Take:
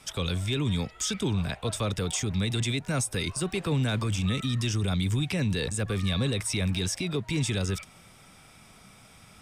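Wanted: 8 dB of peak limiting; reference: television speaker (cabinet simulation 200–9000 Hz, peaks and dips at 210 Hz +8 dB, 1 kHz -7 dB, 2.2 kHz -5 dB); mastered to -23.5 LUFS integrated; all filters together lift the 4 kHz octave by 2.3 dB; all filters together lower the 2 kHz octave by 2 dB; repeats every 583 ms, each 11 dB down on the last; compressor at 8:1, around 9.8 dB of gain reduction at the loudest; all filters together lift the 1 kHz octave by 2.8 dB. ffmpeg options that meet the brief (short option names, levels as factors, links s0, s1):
-af "equalizer=f=1000:t=o:g=8.5,equalizer=f=2000:t=o:g=-3.5,equalizer=f=4000:t=o:g=3.5,acompressor=threshold=0.0224:ratio=8,alimiter=level_in=2.24:limit=0.0631:level=0:latency=1,volume=0.447,highpass=f=200:w=0.5412,highpass=f=200:w=1.3066,equalizer=f=210:t=q:w=4:g=8,equalizer=f=1000:t=q:w=4:g=-7,equalizer=f=2200:t=q:w=4:g=-5,lowpass=f=9000:w=0.5412,lowpass=f=9000:w=1.3066,aecho=1:1:583|1166|1749:0.282|0.0789|0.0221,volume=7.5"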